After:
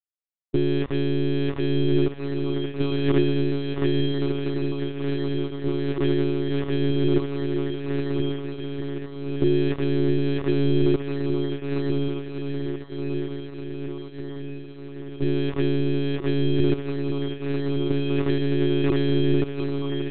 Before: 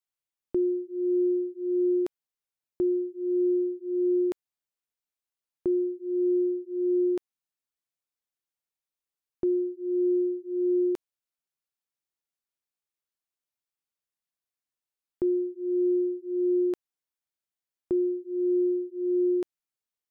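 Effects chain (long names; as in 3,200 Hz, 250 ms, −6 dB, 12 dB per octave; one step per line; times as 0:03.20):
parametric band 250 Hz +14 dB 2.1 octaves
in parallel at −2 dB: compressor whose output falls as the input rises −20 dBFS, ratio −1
on the sum: centre clipping without the shift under −23 dBFS
feedback delay with all-pass diffusion 1,316 ms, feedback 60%, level −4 dB
one-pitch LPC vocoder at 8 kHz 140 Hz
level −6 dB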